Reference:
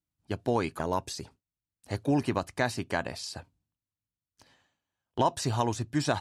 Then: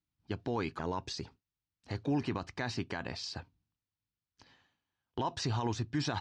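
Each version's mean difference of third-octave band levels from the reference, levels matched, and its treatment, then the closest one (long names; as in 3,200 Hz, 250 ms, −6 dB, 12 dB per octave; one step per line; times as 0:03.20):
4.5 dB: low-pass filter 5,600 Hz 24 dB per octave
parametric band 600 Hz −6.5 dB 0.43 octaves
brickwall limiter −24 dBFS, peak gain reduction 10 dB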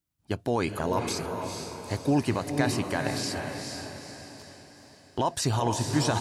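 6.5 dB: high-shelf EQ 8,900 Hz +4.5 dB
brickwall limiter −19 dBFS, peak gain reduction 7 dB
on a send: feedback delay with all-pass diffusion 458 ms, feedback 47%, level −4.5 dB
on the sum: level +3.5 dB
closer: first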